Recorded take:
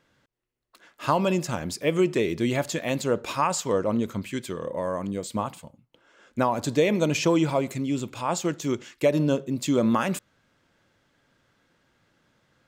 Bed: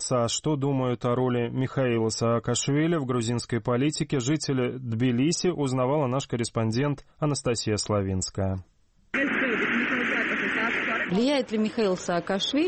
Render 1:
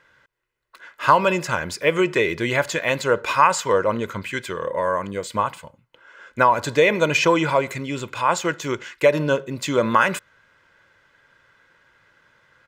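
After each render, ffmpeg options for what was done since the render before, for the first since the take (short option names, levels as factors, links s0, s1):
-af "equalizer=f=1600:w=0.71:g=12.5,aecho=1:1:2:0.42"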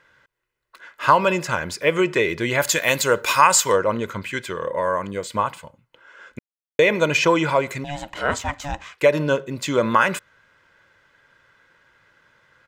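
-filter_complex "[0:a]asplit=3[s0][s1][s2];[s0]afade=t=out:st=2.6:d=0.02[s3];[s1]aemphasis=mode=production:type=75kf,afade=t=in:st=2.6:d=0.02,afade=t=out:st=3.75:d=0.02[s4];[s2]afade=t=in:st=3.75:d=0.02[s5];[s3][s4][s5]amix=inputs=3:normalize=0,asettb=1/sr,asplit=3[s6][s7][s8];[s6]atrim=end=7.844[s9];[s7]atrim=start=7.84:end=9,asetpts=PTS-STARTPTS,afade=t=in:d=0.004:c=qsin,afade=t=out:st=1.156:d=0.004:c=qsin,aeval=exprs='val(0)*sin(2*PI*430*n/s)':c=same[s10];[s8]atrim=start=8.996[s11];[s9][s10]acrossfade=d=0.004:c1=hsin:c2=qsin[s12];[s12][s11]acrossfade=d=0.004:c1=qsin:c2=hsin,asplit=3[s13][s14][s15];[s13]atrim=end=6.39,asetpts=PTS-STARTPTS,afade=t=out:st=6.386:d=0.004:c=hsin[s16];[s14]atrim=start=6.39:end=6.79,asetpts=PTS-STARTPTS,volume=0[s17];[s15]atrim=start=6.79,asetpts=PTS-STARTPTS,afade=t=in:d=0.004:c=hsin[s18];[s16][s17][s18]concat=n=3:v=0:a=1"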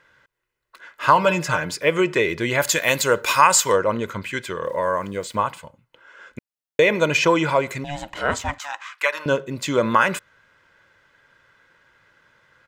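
-filter_complex "[0:a]asettb=1/sr,asplit=3[s0][s1][s2];[s0]atrim=end=1.154[s3];[s1]atrim=start=1.15:end=1.78,asetpts=PTS-STARTPTS,afade=t=in:d=0.004:c=qsin,afade=t=out:st=0.626:d=0.004:c=qsin,aecho=1:1:6.6:0.65,atrim=end_sample=27783[s4];[s2]atrim=start=1.776[s5];[s3][s4]acrossfade=d=0.004:c1=hsin:c2=qsin[s6];[s6][s5]acrossfade=d=0.004:c1=qsin:c2=hsin,asettb=1/sr,asplit=3[s7][s8][s9];[s7]atrim=end=4.644[s10];[s8]atrim=start=4.64:end=5.46,asetpts=PTS-STARTPTS,afade=t=in:d=0.004:c=qsin,afade=t=out:st=0.816:d=0.004:c=qsin,aeval=exprs='val(0)*gte(abs(val(0)),0.00422)':c=same[s11];[s9]atrim=start=5.456[s12];[s10][s11]acrossfade=d=0.004:c1=hsin:c2=qsin[s13];[s13][s12]acrossfade=d=0.004:c1=qsin:c2=hsin,asettb=1/sr,asplit=3[s14][s15][s16];[s14]atrim=end=8.584[s17];[s15]atrim=start=8.58:end=9.26,asetpts=PTS-STARTPTS,afade=t=in:d=0.004:c=qsin,afade=t=out:st=0.676:d=0.004:c=qsin,highpass=f=1200:t=q:w=2.1[s18];[s16]atrim=start=9.256[s19];[s17][s18]acrossfade=d=0.004:c1=hsin:c2=qsin[s20];[s20][s19]acrossfade=d=0.004:c1=qsin:c2=hsin"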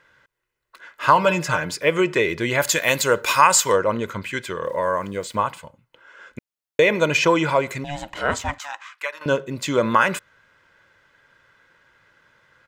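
-filter_complex "[0:a]asplit=2[s0][s1];[s0]atrim=end=9.21,asetpts=PTS-STARTPTS,afade=t=out:st=8.53:d=0.68:silence=0.281838[s2];[s1]atrim=start=9.21,asetpts=PTS-STARTPTS,afade=t=in:d=0.004:c=hsin:silence=0.281838[s3];[s2][s3]concat=n=2:v=0:a=1"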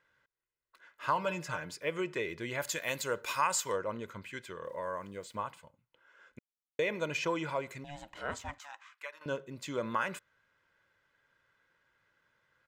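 -af "volume=0.168"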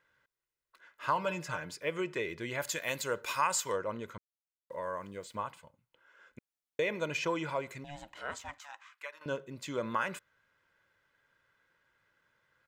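-filter_complex "[0:a]asettb=1/sr,asplit=3[s0][s1][s2];[s0]atrim=end=8.124[s3];[s1]atrim=start=8.12:end=8.69,asetpts=PTS-STARTPTS,afade=t=in:d=0.004:c=qsin,afade=t=out:st=0.566:d=0.004:c=qsin,lowshelf=f=480:g=-8.5[s4];[s2]atrim=start=8.686[s5];[s3][s4]acrossfade=d=0.004:c1=hsin:c2=qsin[s6];[s6][s5]acrossfade=d=0.004:c1=qsin:c2=hsin,asplit=3[s7][s8][s9];[s7]atrim=end=4.18,asetpts=PTS-STARTPTS,afade=t=out:st=4.176:d=0.004:c=hsin[s10];[s8]atrim=start=4.18:end=4.7,asetpts=PTS-STARTPTS,volume=0[s11];[s9]atrim=start=4.7,asetpts=PTS-STARTPTS,afade=t=in:d=0.004:c=hsin[s12];[s10][s11][s12]concat=n=3:v=0:a=1"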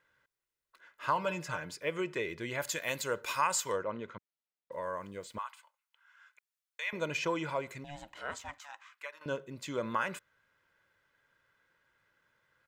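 -filter_complex "[0:a]asettb=1/sr,asplit=3[s0][s1][s2];[s0]atrim=end=3.834[s3];[s1]atrim=start=3.83:end=4.72,asetpts=PTS-STARTPTS,afade=t=in:d=0.004:c=qsin,afade=t=out:st=0.886:d=0.004:c=qsin,highpass=110,lowpass=3800[s4];[s2]atrim=start=4.716[s5];[s3][s4]acrossfade=d=0.004:c1=hsin:c2=qsin[s6];[s6][s5]acrossfade=d=0.004:c1=qsin:c2=hsin,asettb=1/sr,asplit=3[s7][s8][s9];[s7]atrim=end=5.384[s10];[s8]atrim=start=5.38:end=6.93,asetpts=PTS-STARTPTS,afade=t=in:d=0.004:c=qsin,afade=t=out:st=1.546:d=0.004:c=qsin,highpass=f=990:w=0.5412,highpass=f=990:w=1.3066[s11];[s9]atrim=start=6.926[s12];[s10][s11]acrossfade=d=0.004:c1=hsin:c2=qsin[s13];[s13][s12]acrossfade=d=0.004:c1=qsin:c2=hsin"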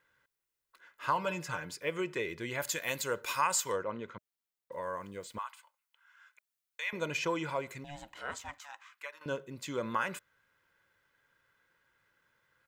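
-af "highshelf=f=10000:g=5.5,bandreject=f=620:w=14"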